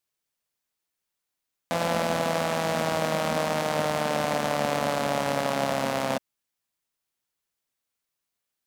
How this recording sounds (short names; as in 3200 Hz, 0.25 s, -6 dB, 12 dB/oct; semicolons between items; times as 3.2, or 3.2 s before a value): noise floor -84 dBFS; spectral tilt -4.0 dB/oct